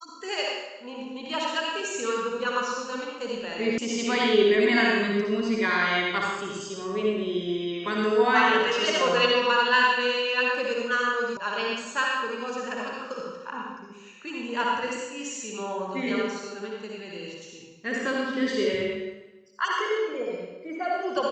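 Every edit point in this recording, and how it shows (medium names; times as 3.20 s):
3.78 s: sound stops dead
11.37 s: sound stops dead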